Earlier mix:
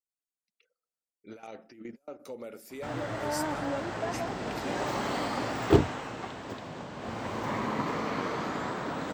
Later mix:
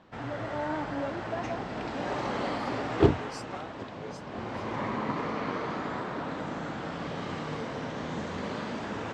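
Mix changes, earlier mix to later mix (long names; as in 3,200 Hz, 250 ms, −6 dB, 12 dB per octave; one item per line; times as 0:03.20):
background: entry −2.70 s
master: add high-frequency loss of the air 110 metres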